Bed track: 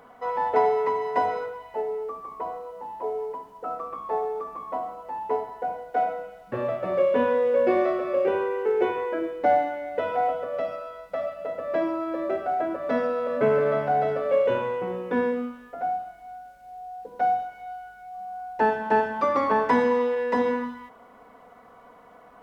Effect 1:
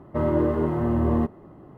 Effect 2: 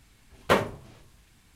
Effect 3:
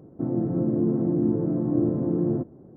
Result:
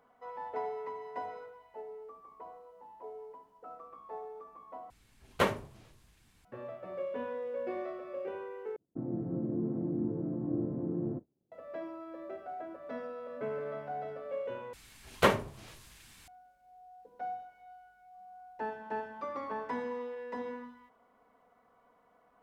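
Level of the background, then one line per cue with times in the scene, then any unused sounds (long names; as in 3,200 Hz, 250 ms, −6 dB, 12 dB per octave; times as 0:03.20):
bed track −16 dB
0:04.90: overwrite with 2 −6 dB
0:08.76: overwrite with 3 −10.5 dB + downward expander −35 dBFS
0:14.73: overwrite with 2 −2.5 dB + one half of a high-frequency compander encoder only
not used: 1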